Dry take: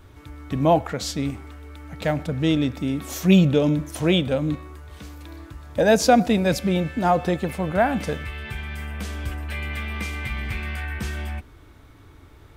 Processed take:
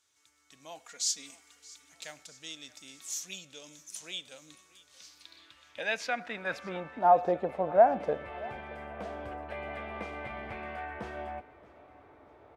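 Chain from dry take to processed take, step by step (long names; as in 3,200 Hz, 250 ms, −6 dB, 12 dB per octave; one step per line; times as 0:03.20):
0:00.79–0:01.93: comb filter 4.2 ms, depth 70%
speech leveller within 4 dB 0.5 s
band-pass filter sweep 6,700 Hz → 650 Hz, 0:04.82–0:07.29
repeating echo 627 ms, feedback 54%, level −21 dB
level +1.5 dB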